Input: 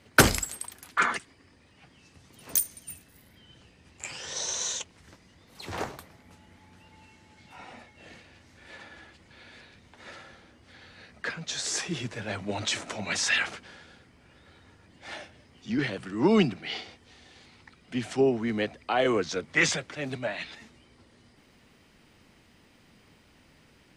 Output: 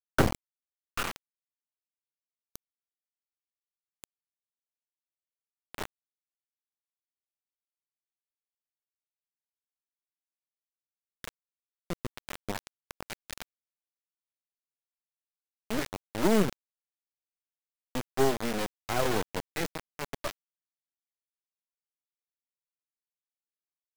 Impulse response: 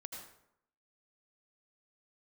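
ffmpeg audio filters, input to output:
-filter_complex "[0:a]afftfilt=real='re*gte(hypot(re,im),0.0251)':imag='im*gte(hypot(re,im),0.0251)':win_size=1024:overlap=0.75,acrossover=split=1300[link_01][link_02];[link_02]acompressor=threshold=-42dB:ratio=16[link_03];[link_01][link_03]amix=inputs=2:normalize=0,aeval=exprs='0.501*(cos(1*acos(clip(val(0)/0.501,-1,1)))-cos(1*PI/2))+0.0447*(cos(2*acos(clip(val(0)/0.501,-1,1)))-cos(2*PI/2))+0.0794*(cos(3*acos(clip(val(0)/0.501,-1,1)))-cos(3*PI/2))+0.0178*(cos(5*acos(clip(val(0)/0.501,-1,1)))-cos(5*PI/2))+0.0447*(cos(8*acos(clip(val(0)/0.501,-1,1)))-cos(8*PI/2))':channel_layout=same,acrusher=bits=4:mix=0:aa=0.000001"

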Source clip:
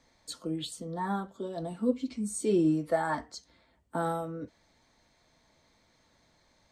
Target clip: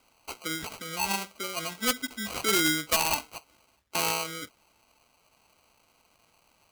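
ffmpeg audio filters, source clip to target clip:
ffmpeg -i in.wav -af "acrusher=samples=25:mix=1:aa=0.000001,tiltshelf=frequency=870:gain=-8.5,aeval=exprs='(mod(3.76*val(0)+1,2)-1)/3.76':channel_layout=same,volume=2dB" out.wav

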